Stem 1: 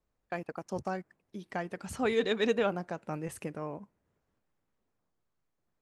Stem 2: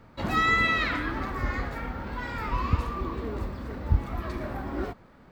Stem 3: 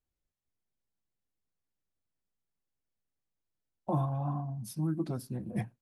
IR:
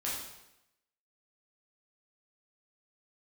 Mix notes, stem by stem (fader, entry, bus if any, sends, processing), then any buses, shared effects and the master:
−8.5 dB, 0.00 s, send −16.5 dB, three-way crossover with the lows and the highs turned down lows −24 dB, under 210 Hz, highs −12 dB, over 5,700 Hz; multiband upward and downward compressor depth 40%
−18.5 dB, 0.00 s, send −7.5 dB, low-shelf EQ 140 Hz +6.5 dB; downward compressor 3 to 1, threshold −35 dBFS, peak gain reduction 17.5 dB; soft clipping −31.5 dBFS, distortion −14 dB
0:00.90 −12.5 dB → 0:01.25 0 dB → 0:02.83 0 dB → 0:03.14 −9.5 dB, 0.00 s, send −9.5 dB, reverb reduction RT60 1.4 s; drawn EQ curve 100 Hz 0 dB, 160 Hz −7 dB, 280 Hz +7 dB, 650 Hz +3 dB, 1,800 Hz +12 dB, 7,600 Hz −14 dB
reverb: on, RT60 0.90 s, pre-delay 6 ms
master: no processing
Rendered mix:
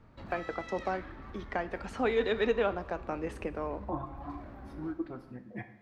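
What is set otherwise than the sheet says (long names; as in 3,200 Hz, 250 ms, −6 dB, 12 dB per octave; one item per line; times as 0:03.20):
stem 1 −8.5 dB → +1.5 dB
stem 2 −18.5 dB → −10.5 dB
master: extra high-shelf EQ 6,200 Hz −10 dB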